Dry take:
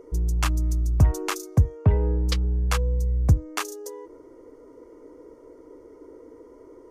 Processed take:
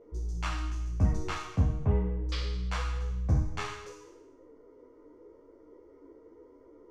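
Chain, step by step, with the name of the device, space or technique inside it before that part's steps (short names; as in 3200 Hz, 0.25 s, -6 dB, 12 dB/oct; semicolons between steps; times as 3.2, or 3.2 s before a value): spectral trails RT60 0.93 s; string-machine ensemble chorus (ensemble effect; LPF 4500 Hz 12 dB/oct); gain -7 dB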